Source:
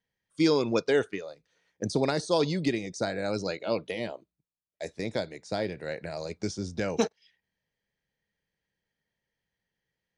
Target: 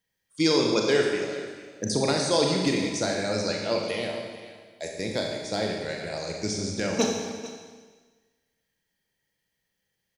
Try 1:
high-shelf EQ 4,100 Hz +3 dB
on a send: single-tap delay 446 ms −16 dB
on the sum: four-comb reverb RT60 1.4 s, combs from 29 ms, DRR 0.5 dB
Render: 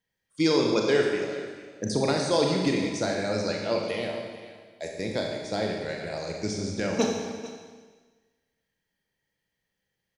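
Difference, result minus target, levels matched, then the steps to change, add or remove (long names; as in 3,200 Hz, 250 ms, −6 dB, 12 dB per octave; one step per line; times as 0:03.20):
8,000 Hz band −4.0 dB
change: high-shelf EQ 4,100 Hz +10 dB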